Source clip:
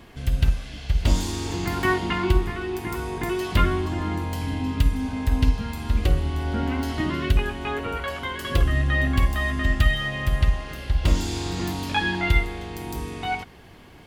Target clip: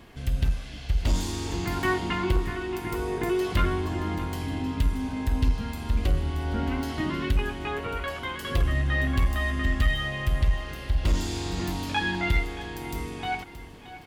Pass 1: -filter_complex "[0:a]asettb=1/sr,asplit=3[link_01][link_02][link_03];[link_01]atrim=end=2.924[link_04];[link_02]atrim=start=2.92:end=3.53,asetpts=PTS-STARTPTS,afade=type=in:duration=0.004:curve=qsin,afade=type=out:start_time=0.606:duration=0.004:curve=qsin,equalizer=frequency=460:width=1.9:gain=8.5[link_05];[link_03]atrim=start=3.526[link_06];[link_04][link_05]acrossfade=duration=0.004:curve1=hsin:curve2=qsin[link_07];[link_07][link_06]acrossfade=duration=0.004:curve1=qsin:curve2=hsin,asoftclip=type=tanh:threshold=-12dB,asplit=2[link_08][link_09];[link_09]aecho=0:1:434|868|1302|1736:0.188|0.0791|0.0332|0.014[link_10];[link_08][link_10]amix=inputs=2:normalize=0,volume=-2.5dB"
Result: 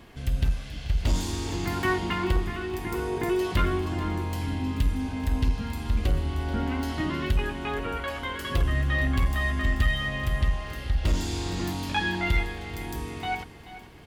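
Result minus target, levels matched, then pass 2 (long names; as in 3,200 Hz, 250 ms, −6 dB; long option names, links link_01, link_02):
echo 190 ms early
-filter_complex "[0:a]asettb=1/sr,asplit=3[link_01][link_02][link_03];[link_01]atrim=end=2.924[link_04];[link_02]atrim=start=2.92:end=3.53,asetpts=PTS-STARTPTS,afade=type=in:duration=0.004:curve=qsin,afade=type=out:start_time=0.606:duration=0.004:curve=qsin,equalizer=frequency=460:width=1.9:gain=8.5[link_05];[link_03]atrim=start=3.526[link_06];[link_04][link_05]acrossfade=duration=0.004:curve1=hsin:curve2=qsin[link_07];[link_07][link_06]acrossfade=duration=0.004:curve1=qsin:curve2=hsin,asoftclip=type=tanh:threshold=-12dB,asplit=2[link_08][link_09];[link_09]aecho=0:1:624|1248|1872|2496:0.188|0.0791|0.0332|0.014[link_10];[link_08][link_10]amix=inputs=2:normalize=0,volume=-2.5dB"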